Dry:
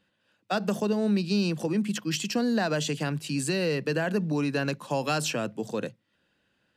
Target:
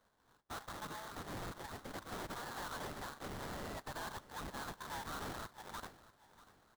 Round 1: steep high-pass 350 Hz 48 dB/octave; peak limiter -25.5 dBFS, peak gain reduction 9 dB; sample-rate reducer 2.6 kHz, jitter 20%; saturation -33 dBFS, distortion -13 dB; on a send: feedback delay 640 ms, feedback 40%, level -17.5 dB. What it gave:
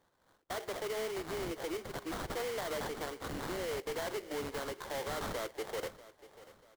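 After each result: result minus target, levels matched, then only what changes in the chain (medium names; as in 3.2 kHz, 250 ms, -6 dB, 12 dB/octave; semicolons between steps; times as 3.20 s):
1 kHz band -4.0 dB; saturation: distortion -6 dB
change: steep high-pass 860 Hz 48 dB/octave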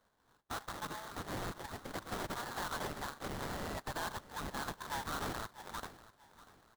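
saturation: distortion -7 dB
change: saturation -41 dBFS, distortion -7 dB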